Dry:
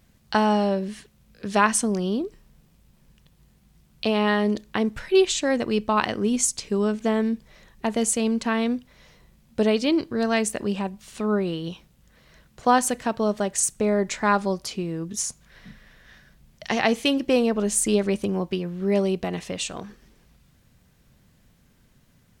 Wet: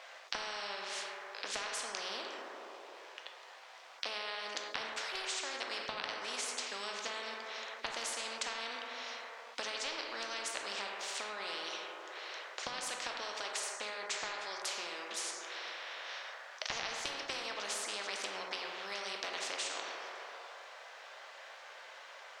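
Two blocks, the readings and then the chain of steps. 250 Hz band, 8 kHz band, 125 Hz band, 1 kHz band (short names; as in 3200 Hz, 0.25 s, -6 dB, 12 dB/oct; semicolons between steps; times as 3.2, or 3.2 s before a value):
-32.5 dB, -13.5 dB, -34.0 dB, -15.0 dB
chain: steep high-pass 570 Hz 36 dB/oct; compressor 10:1, threshold -31 dBFS, peak gain reduction 18 dB; air absorption 160 m; plate-style reverb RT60 1.6 s, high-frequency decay 0.3×, pre-delay 0 ms, DRR 2.5 dB; spectral compressor 4:1; gain +2 dB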